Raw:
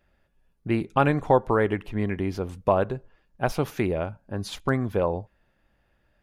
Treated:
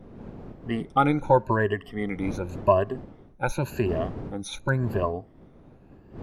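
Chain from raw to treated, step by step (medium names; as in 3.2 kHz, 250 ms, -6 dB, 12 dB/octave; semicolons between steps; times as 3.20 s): drifting ripple filter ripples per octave 1.4, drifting +0.9 Hz, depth 22 dB; wind noise 300 Hz -35 dBFS; trim -5.5 dB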